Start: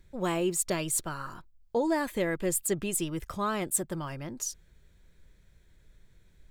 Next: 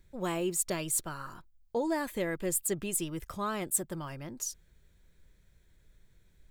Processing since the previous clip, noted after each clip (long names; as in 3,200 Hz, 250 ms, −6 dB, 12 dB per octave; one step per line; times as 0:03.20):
high-shelf EQ 10,000 Hz +6 dB
level −3.5 dB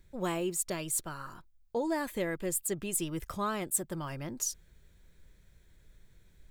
speech leveller within 3 dB 0.5 s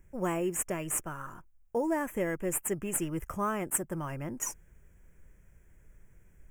in parallel at −12 dB: sample-rate reduction 4,900 Hz, jitter 0%
on the sum: Butterworth band-reject 4,100 Hz, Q 1.2